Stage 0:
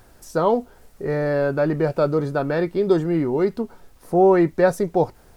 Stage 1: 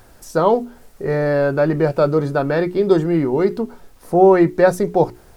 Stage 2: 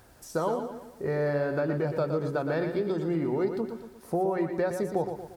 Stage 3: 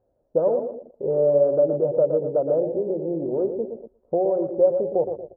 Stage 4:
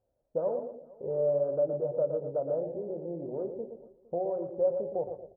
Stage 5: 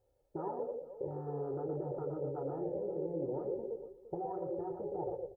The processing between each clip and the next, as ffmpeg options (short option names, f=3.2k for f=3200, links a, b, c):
-af "bandreject=f=60:t=h:w=6,bandreject=f=120:t=h:w=6,bandreject=f=180:t=h:w=6,bandreject=f=240:t=h:w=6,bandreject=f=300:t=h:w=6,bandreject=f=360:t=h:w=6,bandreject=f=420:t=h:w=6,volume=4dB"
-filter_complex "[0:a]highpass=45,acompressor=threshold=-18dB:ratio=6,asplit=2[a][b];[b]aecho=0:1:117|234|351|468|585:0.422|0.194|0.0892|0.041|0.0189[c];[a][c]amix=inputs=2:normalize=0,volume=-7dB"
-af "afwtdn=0.0224,asubboost=boost=7.5:cutoff=60,lowpass=f=560:t=q:w=4.9,volume=-1dB"
-filter_complex "[0:a]equalizer=f=340:t=o:w=1:g=-6,asplit=2[a][b];[b]adelay=29,volume=-12.5dB[c];[a][c]amix=inputs=2:normalize=0,asplit=2[d][e];[e]adelay=460.6,volume=-23dB,highshelf=f=4k:g=-10.4[f];[d][f]amix=inputs=2:normalize=0,volume=-7.5dB"
-af "afftfilt=real='re*lt(hypot(re,im),0.126)':imag='im*lt(hypot(re,im),0.126)':win_size=1024:overlap=0.75,aecho=1:1:2.3:0.68,volume=1.5dB"